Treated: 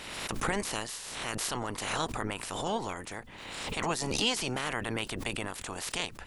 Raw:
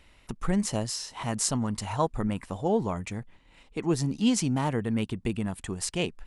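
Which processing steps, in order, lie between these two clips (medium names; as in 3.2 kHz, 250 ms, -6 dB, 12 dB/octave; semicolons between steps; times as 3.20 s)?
spectral peaks clipped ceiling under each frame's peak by 25 dB; swell ahead of each attack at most 34 dB/s; trim -6.5 dB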